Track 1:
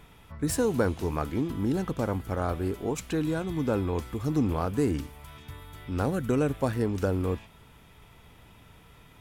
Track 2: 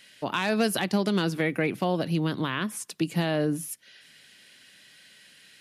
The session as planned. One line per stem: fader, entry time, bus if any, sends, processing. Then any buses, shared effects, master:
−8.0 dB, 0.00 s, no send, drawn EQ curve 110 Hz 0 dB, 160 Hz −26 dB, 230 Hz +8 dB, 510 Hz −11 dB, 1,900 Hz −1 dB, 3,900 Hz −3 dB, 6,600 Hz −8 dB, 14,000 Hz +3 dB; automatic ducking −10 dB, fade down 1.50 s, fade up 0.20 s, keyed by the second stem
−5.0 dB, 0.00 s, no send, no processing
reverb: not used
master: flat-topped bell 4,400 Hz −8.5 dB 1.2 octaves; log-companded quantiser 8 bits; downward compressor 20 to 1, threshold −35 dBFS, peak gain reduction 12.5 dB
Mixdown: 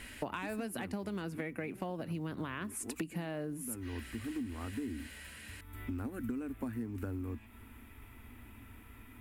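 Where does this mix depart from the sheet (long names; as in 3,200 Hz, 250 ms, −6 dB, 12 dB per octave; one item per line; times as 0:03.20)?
stem 1 −8.0 dB → +2.0 dB
stem 2 −5.0 dB → +5.5 dB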